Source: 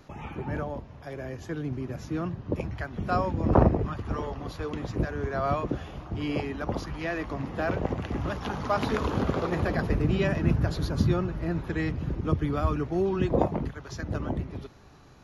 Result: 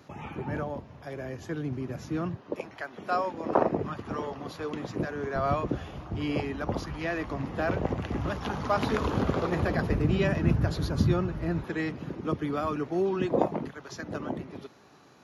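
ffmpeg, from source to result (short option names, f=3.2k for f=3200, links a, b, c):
-af "asetnsamples=n=441:p=0,asendcmd='2.37 highpass f 380;3.72 highpass f 160;5.36 highpass f 52;11.64 highpass f 200',highpass=95"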